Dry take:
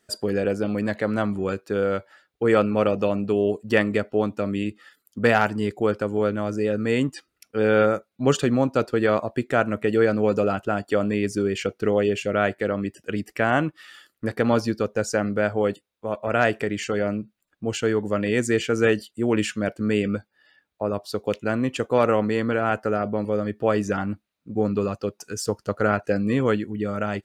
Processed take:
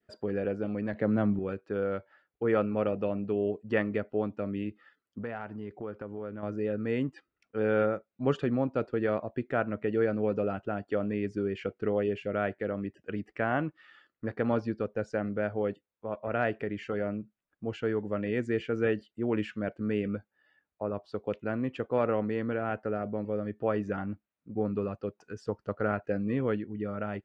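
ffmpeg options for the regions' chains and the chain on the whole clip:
-filter_complex "[0:a]asettb=1/sr,asplit=3[s0][s1][s2];[s0]atrim=end=0.934[s3];[s1]atrim=start=0.93:end=1.39,asetpts=PTS-STARTPTS,afade=t=in:d=0.004:c=qsin,afade=t=out:st=0.456:d=0.004:c=qsin,highpass=98,lowshelf=f=370:g=9.5[s4];[s2]atrim=start=1.386[s5];[s3][s4]acrossfade=d=0.004:c1=hsin:c2=qsin[s6];[s6][s5]acrossfade=d=0.004:c1=qsin:c2=hsin,asettb=1/sr,asplit=3[s7][s8][s9];[s7]atrim=end=5.214[s10];[s8]atrim=start=5.21:end=6.43,asetpts=PTS-STARTPTS,afade=t=in:d=0.004:c=qsin,afade=t=out:st=1.216:d=0.004:c=qsin,highshelf=f=3700:g=-6,acompressor=threshold=0.0316:ratio=2.5:attack=3.2:release=140:knee=1:detection=peak[s11];[s9]atrim=start=6.426[s12];[s10][s11]acrossfade=d=0.004:c1=hsin:c2=qsin[s13];[s13][s12]acrossfade=d=0.004:c1=qsin:c2=hsin,lowpass=2200,adynamicequalizer=threshold=0.0112:dfrequency=1100:dqfactor=1.5:tfrequency=1100:tqfactor=1.5:attack=5:release=100:ratio=0.375:range=2.5:mode=cutabove:tftype=bell,volume=0.422"

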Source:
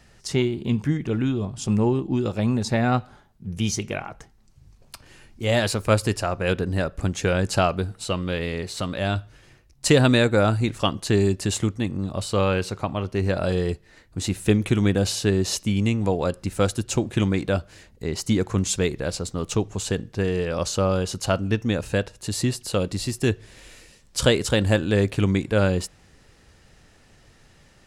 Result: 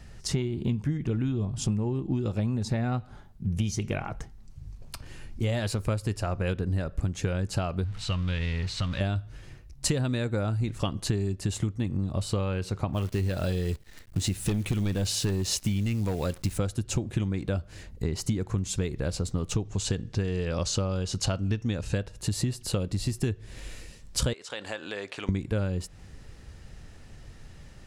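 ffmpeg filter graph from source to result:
-filter_complex "[0:a]asettb=1/sr,asplit=3[s0][s1][s2];[s0]atrim=end=7.844[s3];[s1]atrim=start=7.84:end=9.01,asetpts=PTS-STARTPTS,afade=t=in:d=0.004:c=qsin,afade=t=out:st=1.166:d=0.004:c=qsin,aeval=exprs='val(0)+0.5*0.02*sgn(val(0))':c=same,lowpass=4500,equalizer=f=400:w=0.51:g=-14[s4];[s2]atrim=start=9.006[s5];[s3][s4]acrossfade=d=0.004:c1=hsin:c2=qsin[s6];[s6][s5]acrossfade=d=0.004:c1=qsin:c2=hsin,asettb=1/sr,asplit=3[s7][s8][s9];[s7]atrim=end=12.924[s10];[s8]atrim=start=12.92:end=16.58,asetpts=PTS-STARTPTS,afade=t=in:d=0.004:c=qsin,afade=t=out:st=3.656:d=0.004:c=qsin,acrusher=bits=8:dc=4:mix=0:aa=0.000001,asoftclip=type=hard:threshold=0.15,adynamicequalizer=threshold=0.00708:dfrequency=1800:dqfactor=0.7:tfrequency=1800:tqfactor=0.7:attack=5:release=100:ratio=0.375:range=3:mode=boostabove:tftype=highshelf[s11];[s9]atrim=start=16.576[s12];[s10][s11]acrossfade=d=0.004:c1=hsin:c2=qsin[s13];[s13][s12]acrossfade=d=0.004:c1=qsin:c2=hsin,asettb=1/sr,asplit=3[s14][s15][s16];[s14]atrim=end=19.654[s17];[s15]atrim=start=19.65:end=21.98,asetpts=PTS-STARTPTS,afade=t=in:d=0.004:c=qsin,afade=t=out:st=2.326:d=0.004:c=qsin,lowpass=6400,highshelf=f=3700:g=9.5[s18];[s16]atrim=start=21.976[s19];[s17][s18]acrossfade=d=0.004:c1=hsin:c2=qsin[s20];[s20][s19]acrossfade=d=0.004:c1=qsin:c2=hsin,asettb=1/sr,asplit=3[s21][s22][s23];[s21]atrim=end=24.334[s24];[s22]atrim=start=24.33:end=25.29,asetpts=PTS-STARTPTS,afade=t=in:d=0.004:c=qsin,afade=t=out:st=0.956:d=0.004:c=qsin,highpass=700,lowpass=6400,acompressor=threshold=0.0178:ratio=2.5:attack=3.2:release=140:knee=1:detection=peak[s25];[s23]atrim=start=25.286[s26];[s24][s25]acrossfade=d=0.004:c1=hsin:c2=qsin[s27];[s27][s26]acrossfade=d=0.004:c1=qsin:c2=hsin,lowshelf=f=170:g=11.5,acompressor=threshold=0.0631:ratio=10"

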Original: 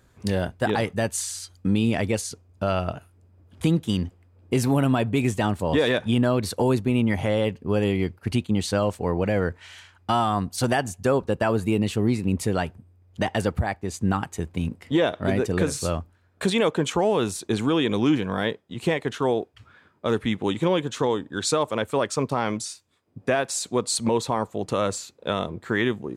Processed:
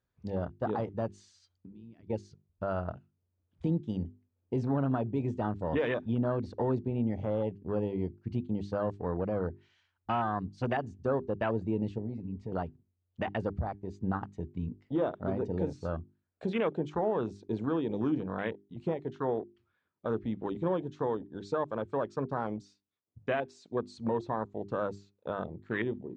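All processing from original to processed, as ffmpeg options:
-filter_complex "[0:a]asettb=1/sr,asplit=3[s0][s1][s2];[s0]atrim=end=1.584[s3];[s1]atrim=start=1.58:end=2.1,asetpts=PTS-STARTPTS,afade=t=in:d=0.004:c=qsin,afade=t=out:st=0.516:d=0.004:c=qsin,highpass=49,acompressor=threshold=0.0158:ratio=10:attack=3.2:release=140:knee=1:detection=peak[s4];[s2]atrim=start=2.096[s5];[s3][s4]acrossfade=d=0.004:c1=hsin:c2=qsin[s6];[s6][s5]acrossfade=d=0.004:c1=qsin:c2=hsin,asettb=1/sr,asplit=3[s7][s8][s9];[s7]atrim=end=11.984[s10];[s8]atrim=start=11.98:end=12.52,asetpts=PTS-STARTPTS,afade=t=in:d=0.004:c=qsin,afade=t=out:st=0.536:d=0.004:c=qsin,lowpass=f=2300:p=1,bandreject=f=340:w=8.3,acompressor=threshold=0.0398:ratio=2:attack=3.2:release=140:knee=1:detection=peak[s11];[s9]atrim=start=12.516[s12];[s10][s11]acrossfade=d=0.004:c1=hsin:c2=qsin[s13];[s13][s12]acrossfade=d=0.004:c1=qsin:c2=hsin,afwtdn=0.0398,lowpass=f=5700:w=0.5412,lowpass=f=5700:w=1.3066,bandreject=f=50:t=h:w=6,bandreject=f=100:t=h:w=6,bandreject=f=150:t=h:w=6,bandreject=f=200:t=h:w=6,bandreject=f=250:t=h:w=6,bandreject=f=300:t=h:w=6,bandreject=f=350:t=h:w=6,bandreject=f=400:t=h:w=6,volume=0.398"

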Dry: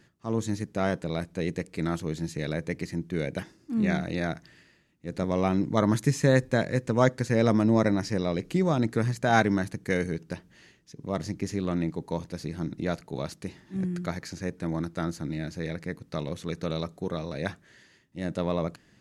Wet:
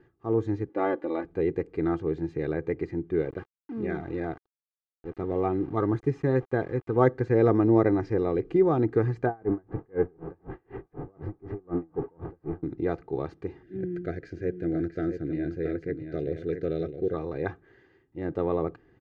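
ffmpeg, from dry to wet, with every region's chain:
-filter_complex "[0:a]asettb=1/sr,asplit=3[s0][s1][s2];[s0]atrim=end=0.694[s3];[s1]atrim=start=0.69:end=1.25,asetpts=PTS-STARTPTS,afade=t=in:d=0.004:c=qsin,afade=t=out:st=0.556:d=0.004:c=qsin,highpass=270,lowpass=4300,aecho=1:1:3.5:0.84,atrim=end_sample=24696[s4];[s2]atrim=start=1.246[s5];[s3][s4]acrossfade=d=0.004:c1=hsin:c2=qsin[s6];[s6][s5]acrossfade=d=0.004:c1=qsin:c2=hsin,asettb=1/sr,asplit=3[s7][s8][s9];[s7]atrim=end=3.224[s10];[s8]atrim=start=3.22:end=6.96,asetpts=PTS-STARTPTS,afade=t=in:d=0.004:c=qsin,afade=t=out:st=3.736:d=0.004:c=qsin,flanger=delay=0:depth=1.1:regen=-52:speed=1.8:shape=triangular,aeval=exprs='val(0)*gte(abs(val(0)),0.00708)':c=same[s11];[s9]atrim=start=6.956[s12];[s10][s11]acrossfade=d=0.004:c1=hsin:c2=qsin[s13];[s13][s12]acrossfade=d=0.004:c1=qsin:c2=hsin,asettb=1/sr,asplit=3[s14][s15][s16];[s14]atrim=end=9.264[s17];[s15]atrim=start=9.26:end=12.63,asetpts=PTS-STARTPTS,afade=t=in:d=0.004:c=qsin,afade=t=out:st=3.366:d=0.004:c=qsin,aeval=exprs='val(0)+0.5*0.0355*sgn(val(0))':c=same,lowpass=1300,aeval=exprs='val(0)*pow(10,-36*(0.5-0.5*cos(2*PI*4*n/s))/20)':c=same[s18];[s16]atrim=start=12.626[s19];[s17][s18]acrossfade=d=0.004:c1=hsin:c2=qsin[s20];[s20][s19]acrossfade=d=0.004:c1=qsin:c2=hsin,asettb=1/sr,asplit=3[s21][s22][s23];[s21]atrim=end=13.634[s24];[s22]atrim=start=13.63:end=17.14,asetpts=PTS-STARTPTS,afade=t=in:d=0.004:c=qsin,afade=t=out:st=3.506:d=0.004:c=qsin,asuperstop=centerf=980:order=8:qfactor=1.5,aecho=1:1:669:0.398,atrim=end_sample=154791[s25];[s23]atrim=start=17.136[s26];[s24][s25]acrossfade=d=0.004:c1=hsin:c2=qsin[s27];[s27][s26]acrossfade=d=0.004:c1=qsin:c2=hsin,lowpass=1400,equalizer=f=380:w=2.3:g=4.5,aecho=1:1:2.5:0.63"

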